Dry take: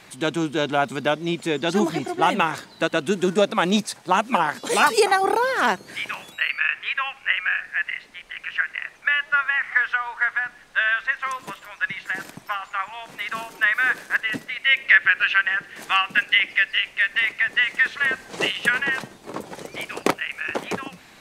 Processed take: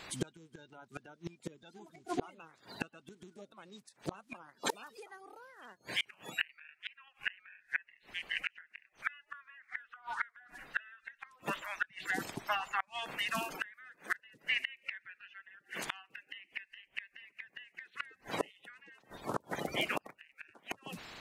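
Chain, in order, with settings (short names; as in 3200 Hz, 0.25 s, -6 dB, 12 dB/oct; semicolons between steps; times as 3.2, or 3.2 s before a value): bin magnitudes rounded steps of 30 dB; 11.92–13.52 dynamic EQ 1600 Hz, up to -7 dB, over -39 dBFS, Q 1; flipped gate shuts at -18 dBFS, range -32 dB; gain -1 dB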